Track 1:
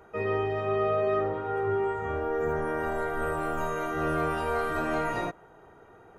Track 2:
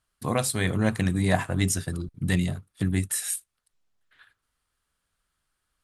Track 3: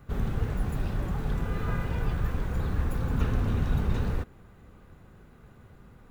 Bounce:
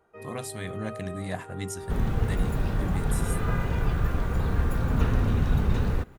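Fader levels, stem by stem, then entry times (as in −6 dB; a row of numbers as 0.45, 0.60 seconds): −13.0, −10.5, +3.0 decibels; 0.00, 0.00, 1.80 seconds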